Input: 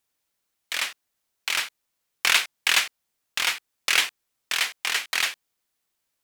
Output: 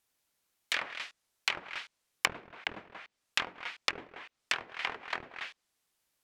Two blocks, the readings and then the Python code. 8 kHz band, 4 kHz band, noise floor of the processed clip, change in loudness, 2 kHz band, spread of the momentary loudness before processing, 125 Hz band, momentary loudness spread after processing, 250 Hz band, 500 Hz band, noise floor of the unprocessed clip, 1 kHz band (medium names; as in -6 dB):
-16.0 dB, -12.5 dB, -83 dBFS, -12.0 dB, -10.5 dB, 11 LU, no reading, 15 LU, 0.0 dB, -2.5 dB, -79 dBFS, -6.5 dB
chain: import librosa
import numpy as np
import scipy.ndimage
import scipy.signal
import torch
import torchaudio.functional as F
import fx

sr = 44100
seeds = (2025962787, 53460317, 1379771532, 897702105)

p1 = x + fx.echo_single(x, sr, ms=183, db=-11.5, dry=0)
y = fx.env_lowpass_down(p1, sr, base_hz=360.0, full_db=-20.5)